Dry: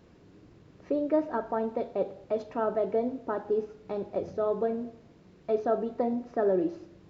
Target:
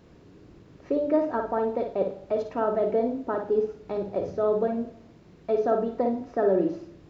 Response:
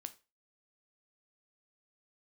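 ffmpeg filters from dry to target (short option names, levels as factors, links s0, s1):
-filter_complex "[0:a]asplit=2[s0][s1];[1:a]atrim=start_sample=2205,lowshelf=f=230:g=8,adelay=56[s2];[s1][s2]afir=irnorm=-1:irlink=0,volume=0.708[s3];[s0][s3]amix=inputs=2:normalize=0,volume=1.33"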